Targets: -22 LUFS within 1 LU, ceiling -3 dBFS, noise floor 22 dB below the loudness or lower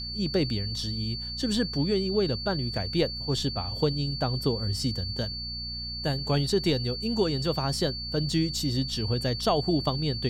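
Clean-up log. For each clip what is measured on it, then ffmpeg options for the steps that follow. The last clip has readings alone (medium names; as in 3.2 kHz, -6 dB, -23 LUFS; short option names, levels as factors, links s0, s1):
hum 60 Hz; highest harmonic 240 Hz; hum level -37 dBFS; steady tone 4.5 kHz; tone level -34 dBFS; loudness -28.0 LUFS; peak level -12.5 dBFS; loudness target -22.0 LUFS
-> -af "bandreject=f=60:t=h:w=4,bandreject=f=120:t=h:w=4,bandreject=f=180:t=h:w=4,bandreject=f=240:t=h:w=4"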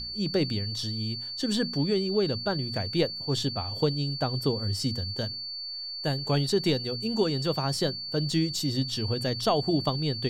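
hum not found; steady tone 4.5 kHz; tone level -34 dBFS
-> -af "bandreject=f=4500:w=30"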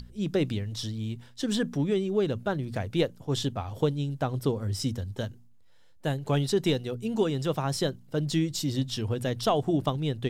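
steady tone not found; loudness -29.5 LUFS; peak level -13.0 dBFS; loudness target -22.0 LUFS
-> -af "volume=2.37"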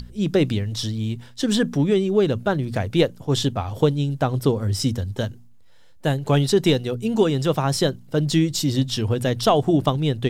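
loudness -22.0 LUFS; peak level -5.5 dBFS; noise floor -46 dBFS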